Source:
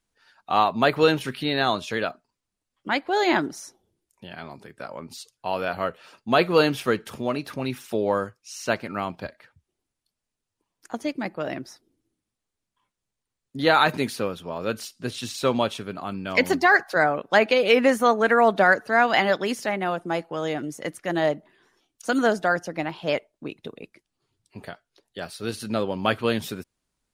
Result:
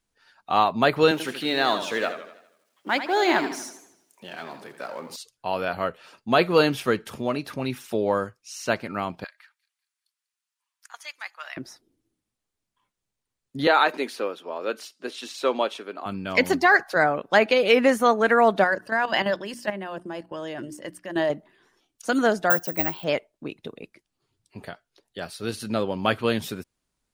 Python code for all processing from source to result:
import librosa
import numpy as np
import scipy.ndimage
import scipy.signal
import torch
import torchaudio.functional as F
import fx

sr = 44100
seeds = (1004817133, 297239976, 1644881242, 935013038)

y = fx.chain(x, sr, fx.law_mismatch(coded='mu'),
    fx.highpass(hz=260.0, slope=12),
    fx.echo_warbled(ms=81, feedback_pct=49, rate_hz=2.8, cents=125, wet_db=-10), at=(1.11, 5.16))
y = fx.chain(y, sr, fx.highpass(hz=1100.0, slope=24),
    fx.echo_wet_highpass(ms=194, feedback_pct=37, hz=4700.0, wet_db=-14.5), at=(9.24, 11.57))
y = fx.chain(y, sr, fx.highpass(hz=300.0, slope=24),
    fx.high_shelf(hz=5700.0, db=-9.0), at=(13.67, 16.06))
y = fx.chain(y, sr, fx.ripple_eq(per_octave=1.3, db=7),
    fx.level_steps(step_db=11),
    fx.hum_notches(base_hz=60, count=6), at=(18.64, 21.3))
y = fx.chain(y, sr, fx.resample_bad(factor=2, down='filtered', up='zero_stuff'),
    fx.quant_float(bits=6), at=(22.5, 23.04))